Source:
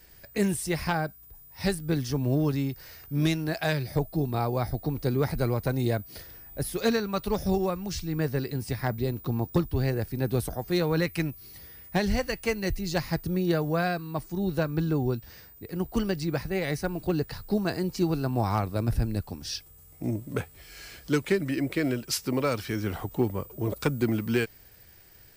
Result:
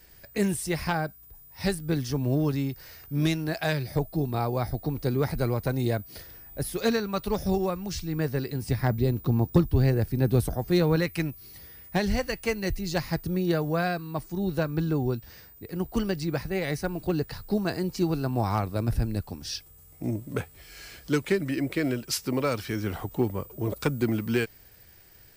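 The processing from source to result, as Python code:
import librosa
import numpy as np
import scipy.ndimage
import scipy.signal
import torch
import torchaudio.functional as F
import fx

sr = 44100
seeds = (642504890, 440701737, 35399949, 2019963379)

y = fx.low_shelf(x, sr, hz=370.0, db=6.0, at=(8.63, 10.96))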